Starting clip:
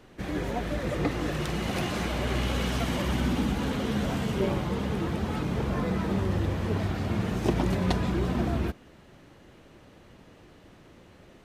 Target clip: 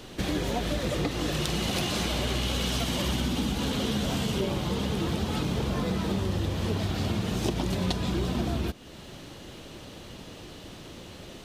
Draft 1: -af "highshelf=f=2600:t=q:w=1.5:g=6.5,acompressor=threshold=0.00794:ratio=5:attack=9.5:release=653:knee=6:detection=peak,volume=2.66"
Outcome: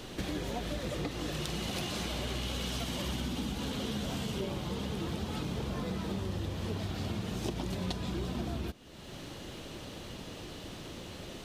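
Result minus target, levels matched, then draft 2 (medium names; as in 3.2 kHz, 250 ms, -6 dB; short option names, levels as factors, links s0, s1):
compression: peak gain reduction +7 dB
-af "highshelf=f=2600:t=q:w=1.5:g=6.5,acompressor=threshold=0.0224:ratio=5:attack=9.5:release=653:knee=6:detection=peak,volume=2.66"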